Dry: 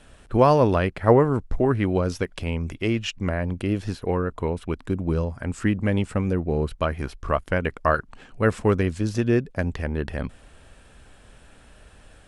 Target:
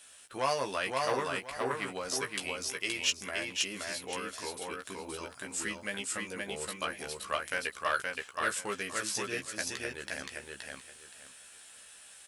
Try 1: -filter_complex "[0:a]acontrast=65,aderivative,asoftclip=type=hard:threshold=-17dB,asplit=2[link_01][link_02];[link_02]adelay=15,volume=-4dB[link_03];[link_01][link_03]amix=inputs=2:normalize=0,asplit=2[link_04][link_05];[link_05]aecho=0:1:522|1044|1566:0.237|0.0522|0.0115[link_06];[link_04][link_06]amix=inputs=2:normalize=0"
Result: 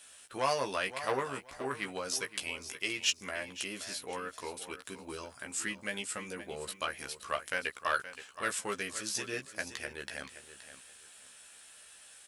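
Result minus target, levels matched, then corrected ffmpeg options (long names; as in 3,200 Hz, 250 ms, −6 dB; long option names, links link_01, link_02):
echo-to-direct −10 dB
-filter_complex "[0:a]acontrast=65,aderivative,asoftclip=type=hard:threshold=-17dB,asplit=2[link_01][link_02];[link_02]adelay=15,volume=-4dB[link_03];[link_01][link_03]amix=inputs=2:normalize=0,asplit=2[link_04][link_05];[link_05]aecho=0:1:522|1044|1566:0.75|0.165|0.0363[link_06];[link_04][link_06]amix=inputs=2:normalize=0"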